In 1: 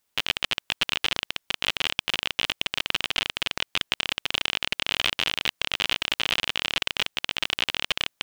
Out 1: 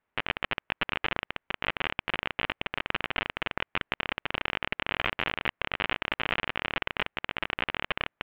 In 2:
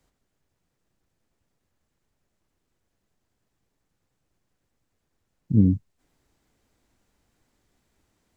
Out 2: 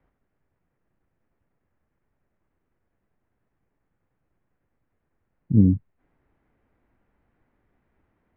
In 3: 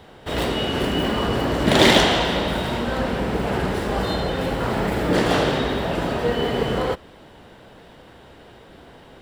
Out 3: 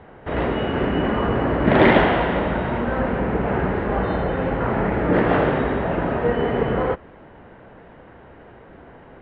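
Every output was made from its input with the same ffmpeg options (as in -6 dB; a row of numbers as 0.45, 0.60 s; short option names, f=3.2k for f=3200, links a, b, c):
-af "lowpass=f=2.2k:w=0.5412,lowpass=f=2.2k:w=1.3066,volume=1.5dB"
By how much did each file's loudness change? -5.5, +1.5, +0.5 LU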